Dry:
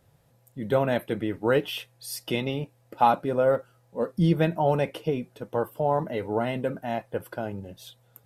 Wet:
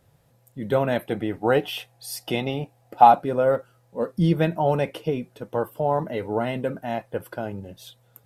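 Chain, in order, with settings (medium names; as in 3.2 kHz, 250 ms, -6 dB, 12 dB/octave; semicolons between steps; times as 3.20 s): 1.05–3.23 s: peaking EQ 750 Hz +12.5 dB 0.25 oct; trim +1.5 dB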